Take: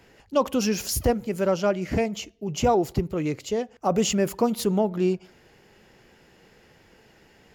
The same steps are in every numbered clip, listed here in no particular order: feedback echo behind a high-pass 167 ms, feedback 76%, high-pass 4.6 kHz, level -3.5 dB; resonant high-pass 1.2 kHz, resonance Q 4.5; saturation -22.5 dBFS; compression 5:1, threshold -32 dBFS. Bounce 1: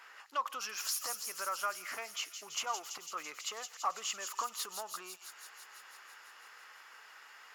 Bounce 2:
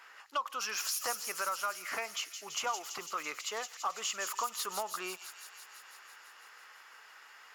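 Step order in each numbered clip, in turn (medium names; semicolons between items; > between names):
compression > feedback echo behind a high-pass > saturation > resonant high-pass; resonant high-pass > compression > saturation > feedback echo behind a high-pass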